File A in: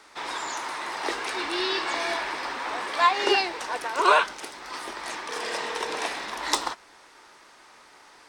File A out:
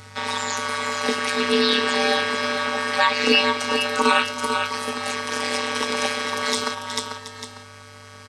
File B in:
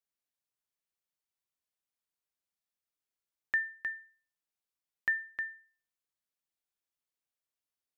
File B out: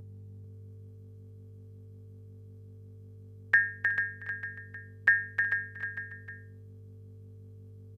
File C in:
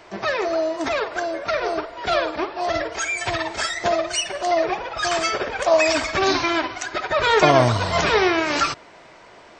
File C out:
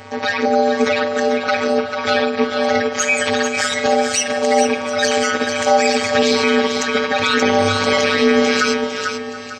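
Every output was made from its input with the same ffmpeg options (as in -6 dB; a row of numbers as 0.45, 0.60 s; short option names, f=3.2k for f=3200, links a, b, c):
-filter_complex "[0:a]aresample=32000,aresample=44100,aeval=exprs='val(0)+0.00398*(sin(2*PI*50*n/s)+sin(2*PI*2*50*n/s)/2+sin(2*PI*3*50*n/s)/3+sin(2*PI*4*50*n/s)/4+sin(2*PI*5*50*n/s)/5)':c=same,acrossover=split=540|1400[a][b][c];[a]aecho=1:1:6.1:0.66[d];[b]acompressor=threshold=-36dB:ratio=6[e];[d][e][c]amix=inputs=3:normalize=0,afftfilt=real='hypot(re,im)*cos(PI*b)':imag='0':win_size=512:overlap=0.75,aeval=exprs='val(0)*sin(2*PI*100*n/s)':c=same,highpass=f=160:p=1,asplit=2[f][g];[g]asoftclip=type=tanh:threshold=-21.5dB,volume=-7dB[h];[f][h]amix=inputs=2:normalize=0,aecho=1:1:368|443|727|896:0.126|0.422|0.1|0.141,alimiter=level_in=11.5dB:limit=-1dB:release=50:level=0:latency=1,volume=-1dB"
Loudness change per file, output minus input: +5.0, +5.5, +4.5 LU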